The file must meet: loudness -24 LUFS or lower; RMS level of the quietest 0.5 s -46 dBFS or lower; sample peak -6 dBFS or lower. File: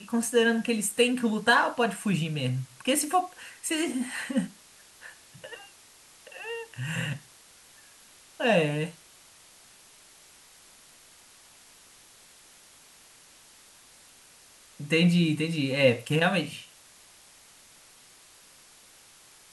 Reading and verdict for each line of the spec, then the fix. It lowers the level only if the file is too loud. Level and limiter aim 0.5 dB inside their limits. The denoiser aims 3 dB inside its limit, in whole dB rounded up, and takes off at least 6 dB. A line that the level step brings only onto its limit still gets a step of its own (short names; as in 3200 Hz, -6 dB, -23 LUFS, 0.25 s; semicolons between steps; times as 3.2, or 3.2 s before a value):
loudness -26.5 LUFS: OK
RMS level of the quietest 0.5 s -55 dBFS: OK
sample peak -9.0 dBFS: OK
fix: none